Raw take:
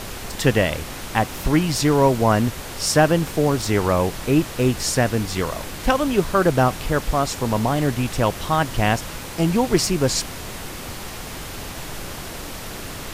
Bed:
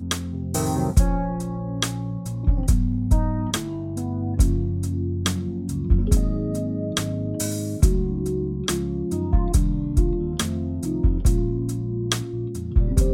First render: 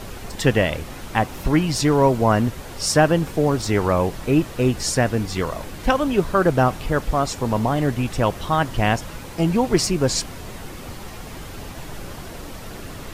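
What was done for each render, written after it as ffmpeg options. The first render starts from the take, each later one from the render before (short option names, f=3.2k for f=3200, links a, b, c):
-af "afftdn=nr=7:nf=-34"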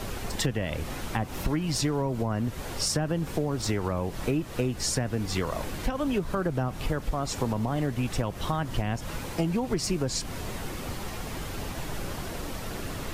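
-filter_complex "[0:a]acrossover=split=260[a][b];[b]alimiter=limit=-14.5dB:level=0:latency=1:release=180[c];[a][c]amix=inputs=2:normalize=0,acompressor=threshold=-24dB:ratio=6"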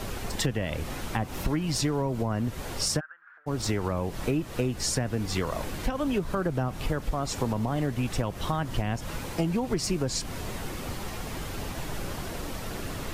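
-filter_complex "[0:a]asplit=3[a][b][c];[a]afade=t=out:st=2.99:d=0.02[d];[b]asuperpass=centerf=1500:order=4:qfactor=3.9,afade=t=in:st=2.99:d=0.02,afade=t=out:st=3.46:d=0.02[e];[c]afade=t=in:st=3.46:d=0.02[f];[d][e][f]amix=inputs=3:normalize=0"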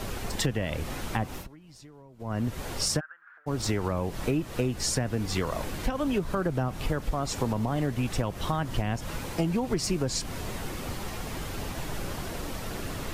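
-filter_complex "[0:a]asplit=3[a][b][c];[a]atrim=end=1.48,asetpts=PTS-STARTPTS,afade=t=out:st=1.23:d=0.25:c=qsin:silence=0.0707946[d];[b]atrim=start=1.48:end=2.19,asetpts=PTS-STARTPTS,volume=-23dB[e];[c]atrim=start=2.19,asetpts=PTS-STARTPTS,afade=t=in:d=0.25:c=qsin:silence=0.0707946[f];[d][e][f]concat=n=3:v=0:a=1"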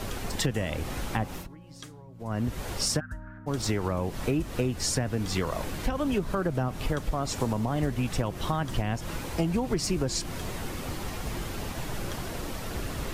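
-filter_complex "[1:a]volume=-21.5dB[a];[0:a][a]amix=inputs=2:normalize=0"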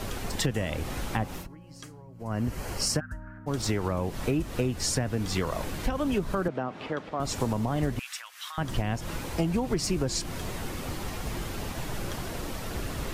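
-filter_complex "[0:a]asettb=1/sr,asplit=3[a][b][c];[a]atrim=end=1.454[d];[b]atrim=start=1.45:end=3.41,asetpts=PTS-STARTPTS,afade=t=in:d=0.004:c=qsin,afade=t=out:st=1.956:d=0.004:c=qsin,bandreject=f=3.6k:w=5.2[e];[c]atrim=start=3.406[f];[d][e]acrossfade=d=0.004:c1=hsin:c2=qsin[g];[g][f]acrossfade=d=0.004:c1=qsin:c2=hsin,asettb=1/sr,asplit=3[h][i][j];[h]atrim=end=6.484[k];[i]atrim=start=6.48:end=7.2,asetpts=PTS-STARTPTS,afade=t=in:d=0.004:c=qsin,afade=t=out:st=0.716:d=0.004:c=qsin,highpass=240,lowpass=3.1k[l];[j]atrim=start=7.196[m];[k][l]acrossfade=d=0.004:c1=hsin:c2=qsin[n];[n][m]acrossfade=d=0.004:c1=qsin:c2=hsin,asettb=1/sr,asplit=3[o][p][q];[o]atrim=end=7.994[r];[p]atrim=start=7.99:end=8.58,asetpts=PTS-STARTPTS,afade=t=in:d=0.004:c=qsin,afade=t=out:st=0.586:d=0.004:c=qsin,highpass=f=1.4k:w=0.5412,highpass=f=1.4k:w=1.3066[s];[q]atrim=start=8.576[t];[r][s]acrossfade=d=0.004:c1=hsin:c2=qsin[u];[u][t]acrossfade=d=0.004:c1=qsin:c2=hsin"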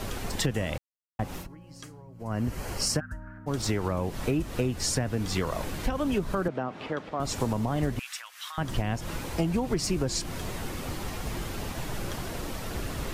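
-filter_complex "[0:a]asplit=3[a][b][c];[a]atrim=end=0.78,asetpts=PTS-STARTPTS,afade=t=out:st=0.776:d=0.004:c=hsin[d];[b]atrim=start=0.78:end=1.19,asetpts=PTS-STARTPTS,volume=0[e];[c]atrim=start=1.19,asetpts=PTS-STARTPTS,afade=t=in:d=0.004:c=hsin[f];[d][e][f]concat=n=3:v=0:a=1"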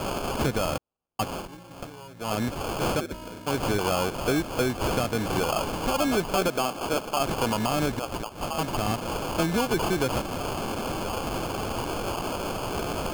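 -filter_complex "[0:a]asplit=2[a][b];[b]highpass=f=720:p=1,volume=17dB,asoftclip=type=tanh:threshold=-13.5dB[c];[a][c]amix=inputs=2:normalize=0,lowpass=f=4.2k:p=1,volume=-6dB,acrusher=samples=23:mix=1:aa=0.000001"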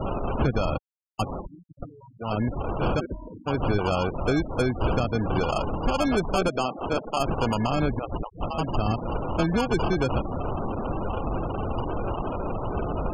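-af "afftfilt=real='re*gte(hypot(re,im),0.0398)':imag='im*gte(hypot(re,im),0.0398)':win_size=1024:overlap=0.75,lowshelf=f=110:g=9.5"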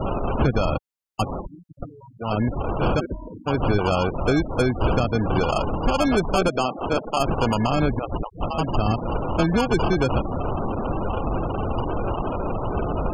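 -af "volume=3.5dB"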